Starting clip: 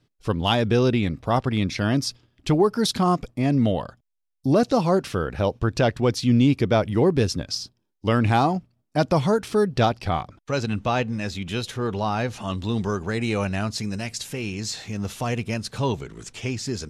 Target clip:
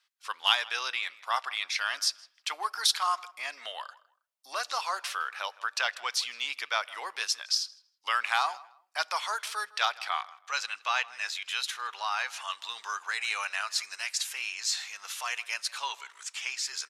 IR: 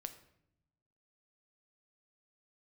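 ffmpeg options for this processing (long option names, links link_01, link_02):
-filter_complex "[0:a]highpass=frequency=1100:width=0.5412,highpass=frequency=1100:width=1.3066,asplit=2[link_01][link_02];[link_02]adelay=160,lowpass=frequency=2900:poles=1,volume=-20dB,asplit=2[link_03][link_04];[link_04]adelay=160,lowpass=frequency=2900:poles=1,volume=0.25[link_05];[link_01][link_03][link_05]amix=inputs=3:normalize=0,asplit=2[link_06][link_07];[1:a]atrim=start_sample=2205[link_08];[link_07][link_08]afir=irnorm=-1:irlink=0,volume=-10.5dB[link_09];[link_06][link_09]amix=inputs=2:normalize=0"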